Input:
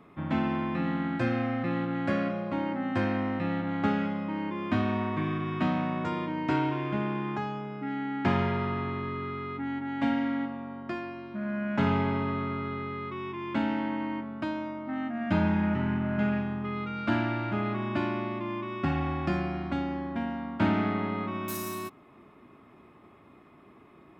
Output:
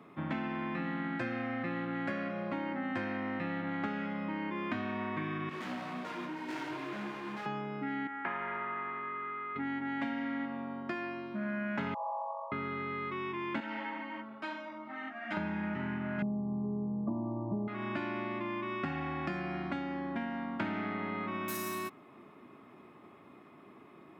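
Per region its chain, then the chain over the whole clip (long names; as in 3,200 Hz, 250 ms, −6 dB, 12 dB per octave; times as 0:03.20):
0:05.49–0:07.46: high-pass filter 170 Hz 24 dB per octave + gain into a clipping stage and back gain 34.5 dB + micro pitch shift up and down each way 28 cents
0:08.07–0:09.56: resonant band-pass 1,400 Hz, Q 0.96 + high-frequency loss of the air 310 metres
0:11.94–0:12.52: phase distortion by the signal itself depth 0.17 ms + linear-phase brick-wall band-pass 490–1,200 Hz + comb filter 6.1 ms, depth 99%
0:13.60–0:15.37: high-pass filter 690 Hz 6 dB per octave + string-ensemble chorus
0:16.22–0:17.68: linear-phase brick-wall band-stop 1,200–11,000 Hz + spectral tilt −3.5 dB per octave + comb filter 5.1 ms, depth 42%
whole clip: high-pass filter 140 Hz 12 dB per octave; dynamic equaliser 1,900 Hz, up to +6 dB, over −49 dBFS, Q 1.5; downward compressor, threshold −33 dBFS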